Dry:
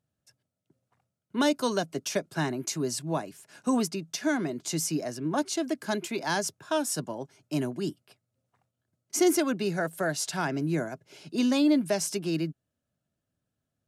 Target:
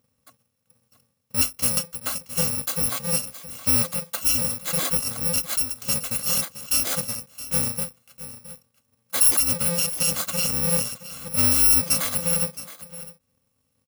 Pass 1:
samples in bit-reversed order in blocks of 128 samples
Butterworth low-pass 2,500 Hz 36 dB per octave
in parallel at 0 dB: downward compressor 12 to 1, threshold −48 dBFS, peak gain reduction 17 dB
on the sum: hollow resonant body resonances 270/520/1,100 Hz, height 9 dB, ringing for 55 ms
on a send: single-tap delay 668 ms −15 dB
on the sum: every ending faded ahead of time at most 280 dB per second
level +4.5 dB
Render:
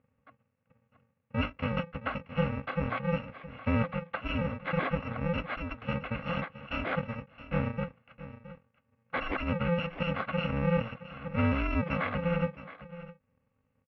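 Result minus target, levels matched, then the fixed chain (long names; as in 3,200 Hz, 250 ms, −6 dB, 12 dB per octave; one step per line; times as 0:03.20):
2,000 Hz band +11.0 dB
samples in bit-reversed order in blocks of 128 samples
in parallel at 0 dB: downward compressor 12 to 1, threshold −48 dBFS, peak gain reduction 29 dB
on the sum: hollow resonant body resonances 270/520/1,100 Hz, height 9 dB, ringing for 55 ms
on a send: single-tap delay 668 ms −15 dB
on the sum: every ending faded ahead of time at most 280 dB per second
level +4.5 dB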